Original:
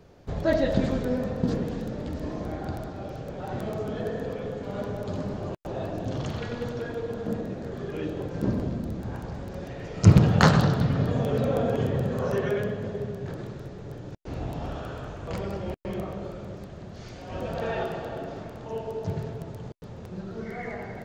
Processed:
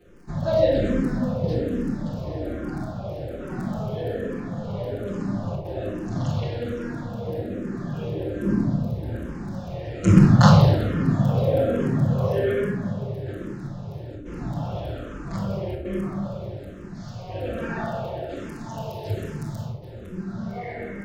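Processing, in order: 18.29–19.65 high shelf 2400 Hz +11 dB; crackle 13/s -46 dBFS; reverb RT60 0.80 s, pre-delay 6 ms, DRR -7.5 dB; endless phaser -1.2 Hz; gain -4 dB

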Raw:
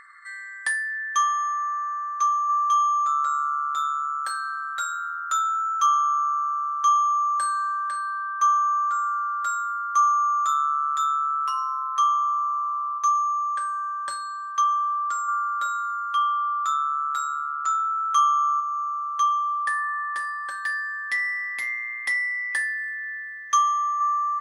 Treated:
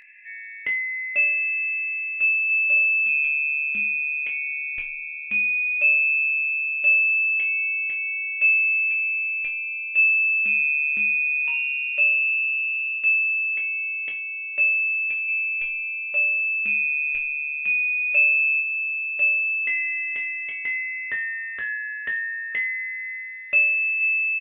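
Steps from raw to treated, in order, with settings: inverted band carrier 3800 Hz; doubler 21 ms -5.5 dB; gain -1.5 dB

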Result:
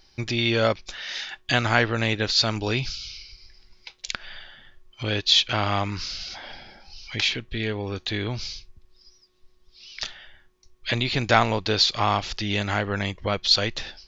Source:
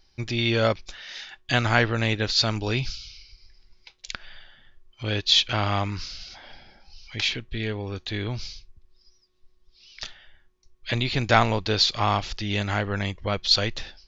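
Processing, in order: in parallel at +3 dB: compressor, threshold -34 dBFS, peak gain reduction 20 dB; on the sum: low shelf 110 Hz -6 dB; gain -1 dB

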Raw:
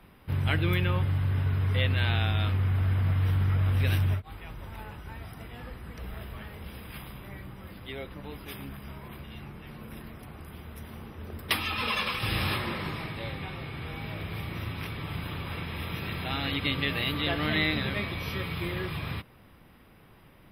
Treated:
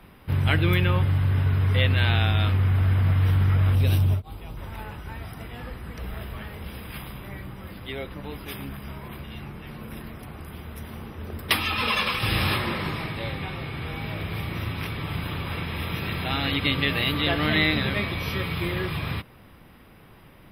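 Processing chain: 3.75–4.57 bell 1800 Hz -11 dB 1.1 oct; gain +5 dB

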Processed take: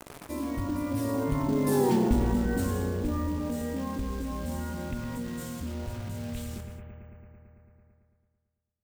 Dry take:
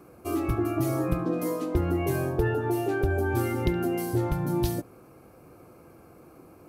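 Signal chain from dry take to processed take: Doppler pass-by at 1.43, 38 m/s, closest 3.8 m; companded quantiser 6-bit; analogue delay 84 ms, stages 2048, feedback 66%, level -10 dB; non-linear reverb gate 0.17 s flat, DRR 11.5 dB; wide varispeed 0.756×; careless resampling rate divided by 2×, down filtered, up hold; fast leveller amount 50%; gain +4.5 dB

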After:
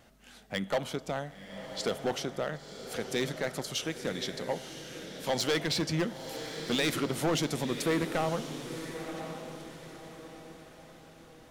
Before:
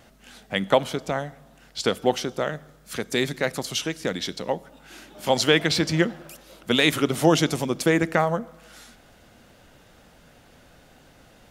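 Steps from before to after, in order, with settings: overloaded stage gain 17 dB; diffused feedback echo 1.032 s, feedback 42%, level -9 dB; gain -6.5 dB

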